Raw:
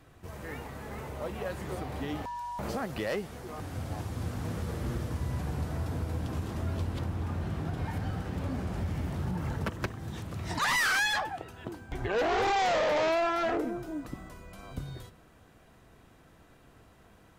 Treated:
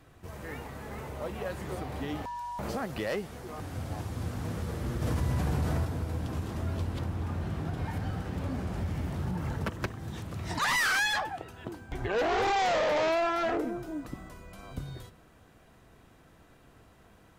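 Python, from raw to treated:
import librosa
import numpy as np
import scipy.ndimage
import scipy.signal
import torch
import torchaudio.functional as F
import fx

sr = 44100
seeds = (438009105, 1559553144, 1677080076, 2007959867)

y = fx.env_flatten(x, sr, amount_pct=70, at=(5.01, 5.84), fade=0.02)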